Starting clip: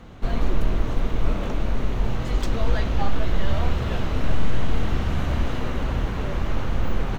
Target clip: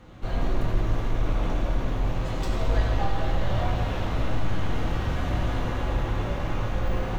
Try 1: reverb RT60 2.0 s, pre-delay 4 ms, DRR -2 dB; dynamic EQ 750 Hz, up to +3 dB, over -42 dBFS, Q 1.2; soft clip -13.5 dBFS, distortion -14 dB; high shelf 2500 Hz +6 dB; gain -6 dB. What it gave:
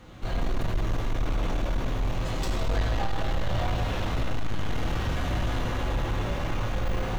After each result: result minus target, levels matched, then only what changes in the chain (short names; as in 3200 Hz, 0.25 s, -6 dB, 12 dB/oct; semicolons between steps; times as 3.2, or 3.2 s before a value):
soft clip: distortion +15 dB; 4000 Hz band +3.5 dB
change: soft clip -3.5 dBFS, distortion -29 dB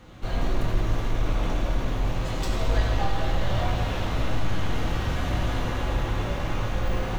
4000 Hz band +3.5 dB
remove: high shelf 2500 Hz +6 dB